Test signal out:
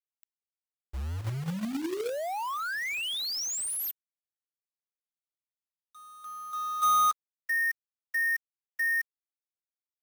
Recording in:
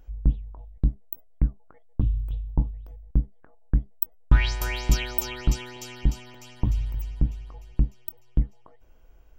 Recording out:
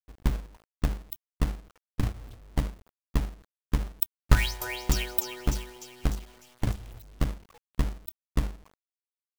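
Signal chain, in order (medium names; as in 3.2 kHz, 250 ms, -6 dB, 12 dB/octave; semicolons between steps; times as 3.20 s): expander on every frequency bin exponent 1.5; hum notches 50/100/150/200/250/300/350/400/450 Hz; companded quantiser 4-bit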